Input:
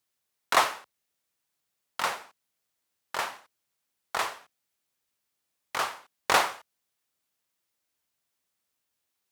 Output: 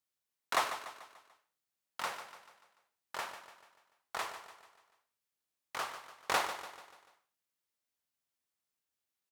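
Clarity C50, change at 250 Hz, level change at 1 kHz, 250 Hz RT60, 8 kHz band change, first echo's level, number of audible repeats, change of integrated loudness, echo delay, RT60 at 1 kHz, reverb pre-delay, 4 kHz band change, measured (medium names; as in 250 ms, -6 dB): no reverb, -8.5 dB, -8.5 dB, no reverb, -8.5 dB, -11.0 dB, 4, -9.5 dB, 146 ms, no reverb, no reverb, -8.5 dB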